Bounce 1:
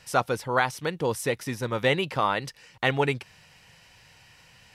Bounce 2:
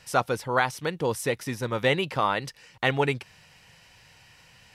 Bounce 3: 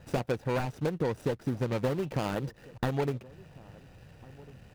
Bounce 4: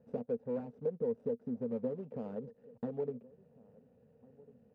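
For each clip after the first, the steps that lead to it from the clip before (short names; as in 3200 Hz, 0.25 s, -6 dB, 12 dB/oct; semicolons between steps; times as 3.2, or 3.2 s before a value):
nothing audible
median filter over 41 samples; compressor 6:1, threshold -36 dBFS, peak gain reduction 14 dB; outdoor echo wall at 240 m, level -22 dB; gain +9 dB
double band-pass 330 Hz, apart 0.94 oct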